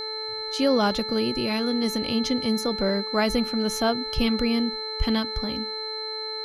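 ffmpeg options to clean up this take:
-af "bandreject=f=435.7:t=h:w=4,bandreject=f=871.4:t=h:w=4,bandreject=f=1.3071k:t=h:w=4,bandreject=f=1.7428k:t=h:w=4,bandreject=f=2.1785k:t=h:w=4,bandreject=f=4.1k:w=30,agate=range=-21dB:threshold=-24dB"

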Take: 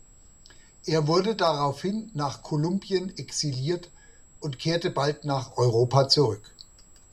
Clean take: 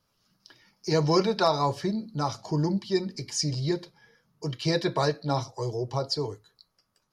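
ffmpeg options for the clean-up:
-af "bandreject=f=7.7k:w=30,agate=range=-21dB:threshold=-46dB,asetnsamples=n=441:p=0,asendcmd='5.51 volume volume -9dB',volume=0dB"

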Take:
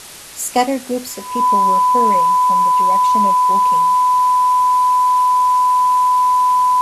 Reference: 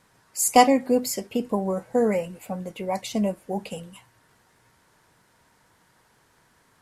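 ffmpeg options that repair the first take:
-af "bandreject=f=1k:w=30,afwtdn=0.02,asetnsamples=n=441:p=0,asendcmd='4.08 volume volume -5dB',volume=0dB"

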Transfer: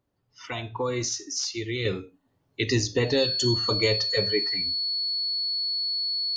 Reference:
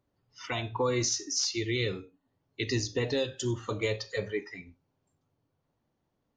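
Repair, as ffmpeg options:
-af "bandreject=f=4.4k:w=30,asetnsamples=n=441:p=0,asendcmd='1.85 volume volume -6dB',volume=0dB"

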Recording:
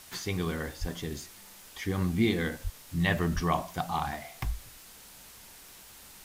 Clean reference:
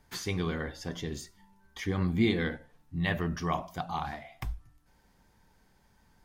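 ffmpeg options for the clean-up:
-filter_complex "[0:a]asplit=3[a][b][c];[a]afade=t=out:st=0.8:d=0.02[d];[b]highpass=f=140:w=0.5412,highpass=f=140:w=1.3066,afade=t=in:st=0.8:d=0.02,afade=t=out:st=0.92:d=0.02[e];[c]afade=t=in:st=0.92:d=0.02[f];[d][e][f]amix=inputs=3:normalize=0,asplit=3[g][h][i];[g]afade=t=out:st=2.63:d=0.02[j];[h]highpass=f=140:w=0.5412,highpass=f=140:w=1.3066,afade=t=in:st=2.63:d=0.02,afade=t=out:st=2.75:d=0.02[k];[i]afade=t=in:st=2.75:d=0.02[l];[j][k][l]amix=inputs=3:normalize=0,asplit=3[m][n][o];[m]afade=t=out:st=3.34:d=0.02[p];[n]highpass=f=140:w=0.5412,highpass=f=140:w=1.3066,afade=t=in:st=3.34:d=0.02,afade=t=out:st=3.46:d=0.02[q];[o]afade=t=in:st=3.46:d=0.02[r];[p][q][r]amix=inputs=3:normalize=0,afwtdn=0.0032,asetnsamples=n=441:p=0,asendcmd='2.77 volume volume -3dB',volume=0dB"

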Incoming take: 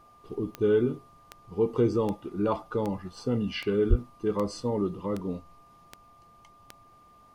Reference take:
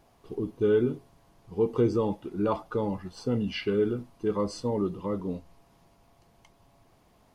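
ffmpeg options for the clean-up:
-filter_complex "[0:a]adeclick=t=4,bandreject=f=1.2k:w=30,asplit=3[a][b][c];[a]afade=t=out:st=3.89:d=0.02[d];[b]highpass=f=140:w=0.5412,highpass=f=140:w=1.3066,afade=t=in:st=3.89:d=0.02,afade=t=out:st=4.01:d=0.02[e];[c]afade=t=in:st=4.01:d=0.02[f];[d][e][f]amix=inputs=3:normalize=0"

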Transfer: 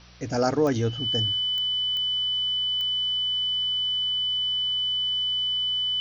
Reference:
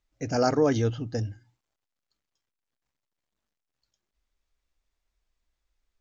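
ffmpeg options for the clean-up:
-af "adeclick=t=4,bandreject=f=60.4:t=h:w=4,bandreject=f=120.8:t=h:w=4,bandreject=f=181.2:t=h:w=4,bandreject=f=3k:w=30,afwtdn=0.0035"

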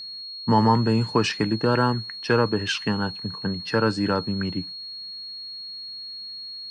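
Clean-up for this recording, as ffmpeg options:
-af "bandreject=f=4.3k:w=30"

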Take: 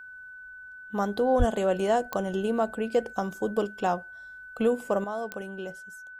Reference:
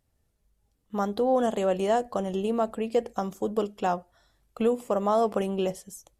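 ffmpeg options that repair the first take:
-filter_complex "[0:a]adeclick=t=4,bandreject=f=1.5k:w=30,asplit=3[a][b][c];[a]afade=t=out:st=1.38:d=0.02[d];[b]highpass=f=140:w=0.5412,highpass=f=140:w=1.3066,afade=t=in:st=1.38:d=0.02,afade=t=out:st=1.5:d=0.02[e];[c]afade=t=in:st=1.5:d=0.02[f];[d][e][f]amix=inputs=3:normalize=0,asetnsamples=n=441:p=0,asendcmd='5.04 volume volume 10dB',volume=0dB"

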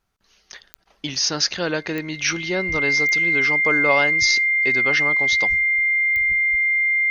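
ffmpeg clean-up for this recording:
-af "adeclick=t=4,bandreject=f=2.1k:w=30"

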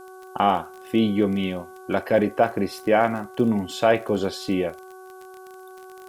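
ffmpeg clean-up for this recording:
-af "adeclick=t=4,bandreject=f=374.4:t=h:w=4,bandreject=f=748.8:t=h:w=4,bandreject=f=1.1232k:t=h:w=4,bandreject=f=1.4976k:t=h:w=4,agate=range=-21dB:threshold=-35dB"

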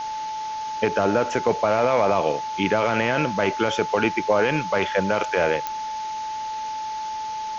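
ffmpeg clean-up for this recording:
-af "adeclick=t=4,bandreject=f=870:w=30,afwtdn=0.013"

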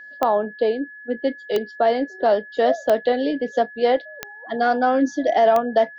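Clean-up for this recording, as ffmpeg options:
-af "adeclick=t=4,bandreject=f=1.7k:w=30"

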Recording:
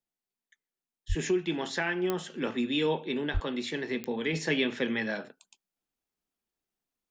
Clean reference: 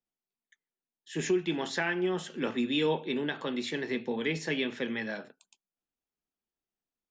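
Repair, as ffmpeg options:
-filter_complex "[0:a]adeclick=t=4,asplit=3[a][b][c];[a]afade=t=out:st=1.08:d=0.02[d];[b]highpass=f=140:w=0.5412,highpass=f=140:w=1.3066,afade=t=in:st=1.08:d=0.02,afade=t=out:st=1.2:d=0.02[e];[c]afade=t=in:st=1.2:d=0.02[f];[d][e][f]amix=inputs=3:normalize=0,asplit=3[g][h][i];[g]afade=t=out:st=3.33:d=0.02[j];[h]highpass=f=140:w=0.5412,highpass=f=140:w=1.3066,afade=t=in:st=3.33:d=0.02,afade=t=out:st=3.45:d=0.02[k];[i]afade=t=in:st=3.45:d=0.02[l];[j][k][l]amix=inputs=3:normalize=0,asetnsamples=n=441:p=0,asendcmd='4.33 volume volume -3.5dB',volume=0dB"

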